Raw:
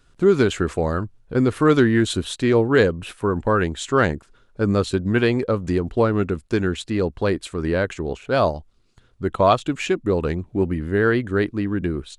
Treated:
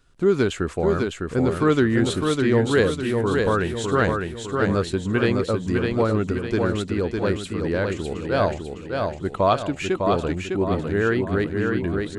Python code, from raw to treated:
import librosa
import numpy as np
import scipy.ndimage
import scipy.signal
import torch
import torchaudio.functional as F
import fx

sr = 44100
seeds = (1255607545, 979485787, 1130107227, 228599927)

y = fx.echo_feedback(x, sr, ms=605, feedback_pct=46, wet_db=-4)
y = F.gain(torch.from_numpy(y), -3.0).numpy()